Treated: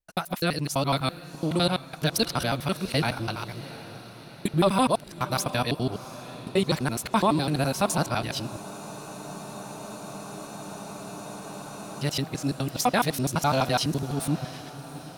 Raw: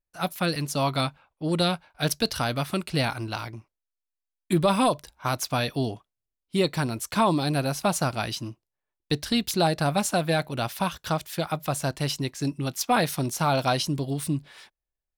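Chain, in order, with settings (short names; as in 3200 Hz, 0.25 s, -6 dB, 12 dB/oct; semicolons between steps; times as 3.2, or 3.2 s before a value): local time reversal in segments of 84 ms; diffused feedback echo 0.724 s, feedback 56%, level -15 dB; spectral freeze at 8.62, 3.40 s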